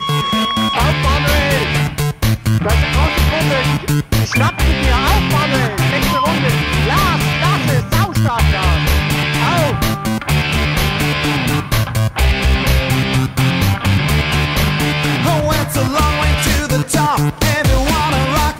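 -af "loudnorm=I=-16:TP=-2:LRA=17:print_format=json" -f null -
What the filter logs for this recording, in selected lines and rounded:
"input_i" : "-14.7",
"input_tp" : "-4.4",
"input_lra" : "1.0",
"input_thresh" : "-24.7",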